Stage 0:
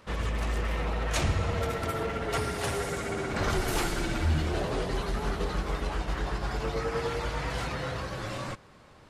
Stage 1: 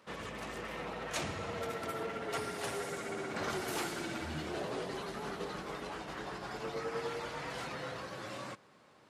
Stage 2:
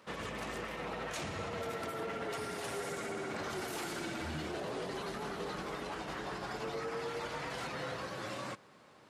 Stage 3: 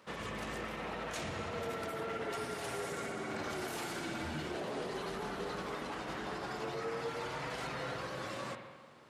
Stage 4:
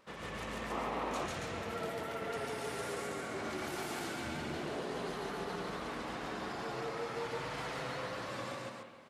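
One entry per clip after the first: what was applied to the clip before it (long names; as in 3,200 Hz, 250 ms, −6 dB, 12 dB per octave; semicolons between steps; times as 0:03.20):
high-pass filter 180 Hz 12 dB per octave; level −6.5 dB
brickwall limiter −33 dBFS, peak gain reduction 8.5 dB; level +2.5 dB
spring reverb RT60 1.4 s, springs 46/54 ms, chirp 25 ms, DRR 5.5 dB; level −1 dB
loudspeakers that aren't time-aligned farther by 50 metres 0 dB, 96 metres −3 dB; pitch vibrato 5.3 Hz 34 cents; sound drawn into the spectrogram noise, 0:00.70–0:01.27, 230–1,300 Hz −35 dBFS; level −4 dB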